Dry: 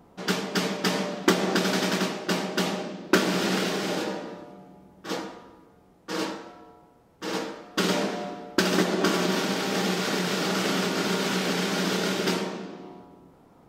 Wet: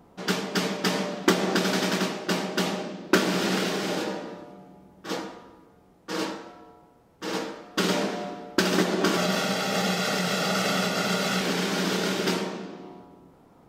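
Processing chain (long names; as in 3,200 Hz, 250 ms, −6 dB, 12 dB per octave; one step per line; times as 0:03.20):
0:09.17–0:11.41: comb filter 1.5 ms, depth 62%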